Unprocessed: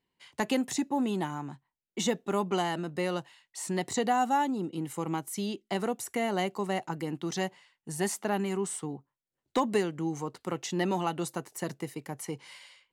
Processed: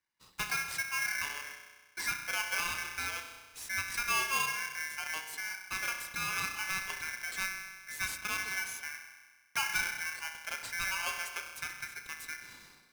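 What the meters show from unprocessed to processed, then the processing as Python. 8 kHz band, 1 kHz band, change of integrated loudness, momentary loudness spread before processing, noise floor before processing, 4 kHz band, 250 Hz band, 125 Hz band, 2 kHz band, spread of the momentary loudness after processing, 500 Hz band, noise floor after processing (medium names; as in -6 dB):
+0.5 dB, -8.0 dB, -2.5 dB, 11 LU, under -85 dBFS, +1.5 dB, -25.5 dB, -17.0 dB, +7.5 dB, 12 LU, -21.5 dB, -64 dBFS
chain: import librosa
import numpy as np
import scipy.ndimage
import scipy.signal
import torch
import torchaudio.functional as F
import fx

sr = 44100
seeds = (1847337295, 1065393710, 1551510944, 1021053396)

y = fx.rev_spring(x, sr, rt60_s=1.4, pass_ms=(32,), chirp_ms=65, drr_db=4.5)
y = y * np.sign(np.sin(2.0 * np.pi * 1900.0 * np.arange(len(y)) / sr))
y = y * 10.0 ** (-6.5 / 20.0)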